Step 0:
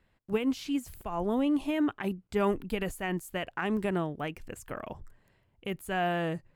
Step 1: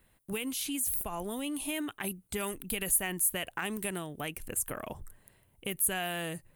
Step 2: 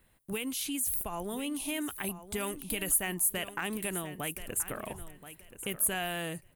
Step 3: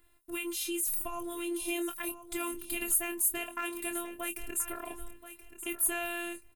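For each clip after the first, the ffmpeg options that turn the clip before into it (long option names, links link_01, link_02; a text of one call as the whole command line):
ffmpeg -i in.wav -filter_complex "[0:a]superequalizer=14b=0.631:16b=2.51,acrossover=split=1900[link_01][link_02];[link_01]acompressor=threshold=-37dB:ratio=5[link_03];[link_02]aemphasis=mode=production:type=50fm[link_04];[link_03][link_04]amix=inputs=2:normalize=0,volume=2dB" out.wav
ffmpeg -i in.wav -af "aecho=1:1:1028|2056|3084:0.224|0.0537|0.0129" out.wav
ffmpeg -i in.wav -filter_complex "[0:a]afftfilt=real='hypot(re,im)*cos(PI*b)':imag='0':win_size=512:overlap=0.75,asplit=2[link_01][link_02];[link_02]adelay=24,volume=-8dB[link_03];[link_01][link_03]amix=inputs=2:normalize=0,volume=2.5dB" out.wav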